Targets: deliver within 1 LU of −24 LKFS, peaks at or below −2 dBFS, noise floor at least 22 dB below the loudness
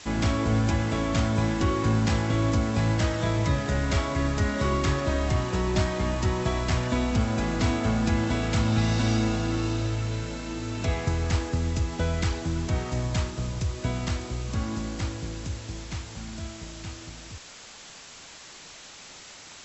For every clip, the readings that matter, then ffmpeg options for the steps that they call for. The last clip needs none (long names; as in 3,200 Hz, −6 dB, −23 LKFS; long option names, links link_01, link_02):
background noise floor −46 dBFS; target noise floor −49 dBFS; integrated loudness −27.0 LKFS; sample peak −13.0 dBFS; target loudness −24.0 LKFS
→ -af "afftdn=noise_reduction=6:noise_floor=-46"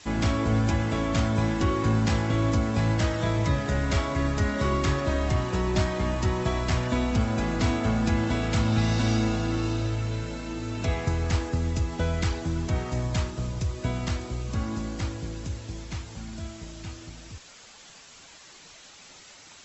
background noise floor −50 dBFS; integrated loudness −27.0 LKFS; sample peak −13.0 dBFS; target loudness −24.0 LKFS
→ -af "volume=3dB"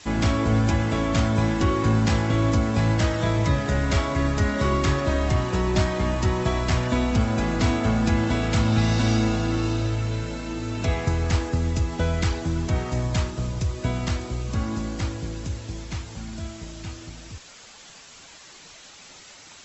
integrated loudness −24.0 LKFS; sample peak −10.0 dBFS; background noise floor −47 dBFS